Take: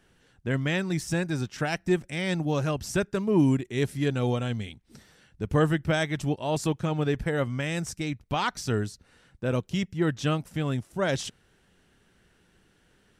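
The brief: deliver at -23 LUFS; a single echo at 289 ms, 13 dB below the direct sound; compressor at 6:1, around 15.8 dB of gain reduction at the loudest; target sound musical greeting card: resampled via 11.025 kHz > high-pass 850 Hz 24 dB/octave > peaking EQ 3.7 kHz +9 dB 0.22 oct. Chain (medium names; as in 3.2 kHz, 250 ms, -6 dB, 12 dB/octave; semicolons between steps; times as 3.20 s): compression 6:1, threshold -35 dBFS; delay 289 ms -13 dB; resampled via 11.025 kHz; high-pass 850 Hz 24 dB/octave; peaking EQ 3.7 kHz +9 dB 0.22 oct; trim +22.5 dB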